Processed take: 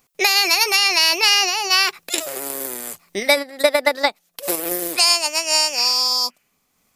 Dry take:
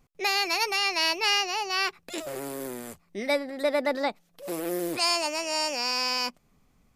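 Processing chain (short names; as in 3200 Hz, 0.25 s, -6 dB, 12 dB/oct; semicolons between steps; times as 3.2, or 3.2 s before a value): RIAA curve recording; 5.8–6.56 spectral repair 1300–3200 Hz both; high shelf 6200 Hz -6 dB; transient shaper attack +11 dB, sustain +7 dB, from 3.42 s sustain -4 dB; maximiser +5.5 dB; gain -1 dB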